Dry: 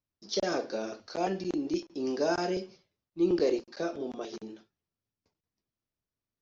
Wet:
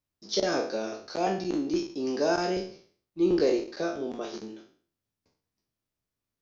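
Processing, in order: spectral trails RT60 0.47 s; gain +1.5 dB

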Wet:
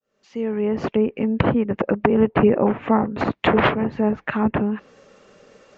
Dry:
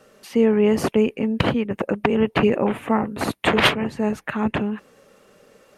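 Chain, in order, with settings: opening faded in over 1.51 s; downsampling 16000 Hz; treble ducked by the level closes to 1500 Hz, closed at -19 dBFS; gain +2.5 dB

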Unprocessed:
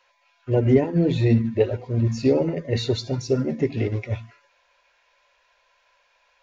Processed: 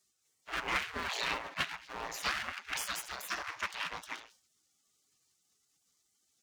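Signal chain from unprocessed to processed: half-wave rectifier; spectral gate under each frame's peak -30 dB weak; gain +8 dB

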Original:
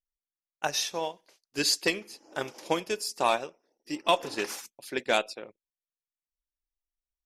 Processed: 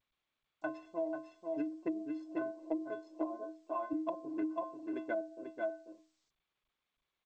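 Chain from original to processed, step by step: Wiener smoothing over 25 samples; HPF 42 Hz 24 dB/oct, from 2.62 s 250 Hz, from 3.93 s 99 Hz; metallic resonator 310 Hz, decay 0.38 s, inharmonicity 0.03; outdoor echo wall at 84 m, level -6 dB; treble ducked by the level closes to 430 Hz, closed at -38 dBFS; LPF 1000 Hz 12 dB/oct; compressor 10:1, threshold -47 dBFS, peak gain reduction 9.5 dB; gain +15 dB; G.722 64 kbps 16000 Hz

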